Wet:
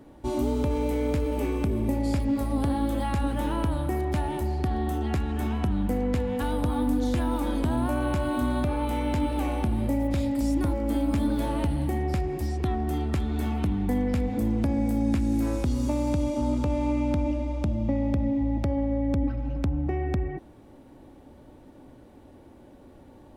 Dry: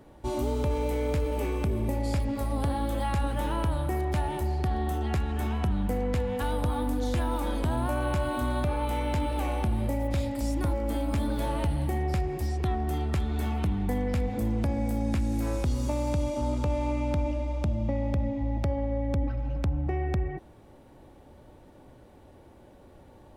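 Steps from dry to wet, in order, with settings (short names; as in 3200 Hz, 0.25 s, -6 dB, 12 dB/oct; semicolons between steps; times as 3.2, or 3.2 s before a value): bell 270 Hz +7.5 dB 0.61 oct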